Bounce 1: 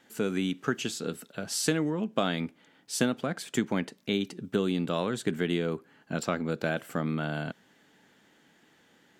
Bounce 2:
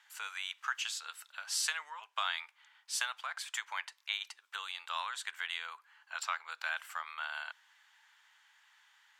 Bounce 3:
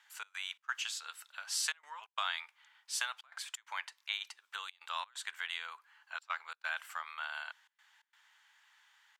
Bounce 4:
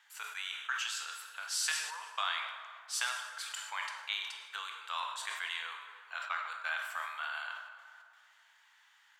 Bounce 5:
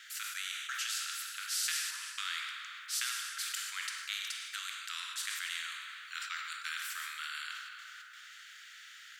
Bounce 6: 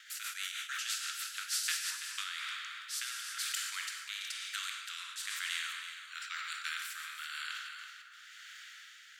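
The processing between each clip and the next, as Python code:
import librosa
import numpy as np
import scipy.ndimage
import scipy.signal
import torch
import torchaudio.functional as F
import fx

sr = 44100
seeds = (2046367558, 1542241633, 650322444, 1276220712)

y1 = scipy.signal.sosfilt(scipy.signal.ellip(4, 1.0, 80, 940.0, 'highpass', fs=sr, output='sos'), x)
y1 = fx.high_shelf(y1, sr, hz=9600.0, db=-6.0)
y2 = fx.step_gate(y1, sr, bpm=131, pattern='xx.xx.xxxxxxx', floor_db=-24.0, edge_ms=4.5)
y2 = y2 * librosa.db_to_amplitude(-1.0)
y3 = fx.rev_plate(y2, sr, seeds[0], rt60_s=2.2, hf_ratio=0.55, predelay_ms=0, drr_db=3.0)
y3 = fx.sustainer(y3, sr, db_per_s=53.0)
y4 = scipy.signal.sosfilt(scipy.signal.cheby1(6, 3, 1300.0, 'highpass', fs=sr, output='sos'), y3)
y4 = fx.spectral_comp(y4, sr, ratio=2.0)
y5 = fx.rotary_switch(y4, sr, hz=6.3, then_hz=1.0, switch_at_s=1.61)
y5 = y5 + 10.0 ** (-10.5 / 20.0) * np.pad(y5, (int(331 * sr / 1000.0), 0))[:len(y5)]
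y5 = y5 * librosa.db_to_amplitude(2.0)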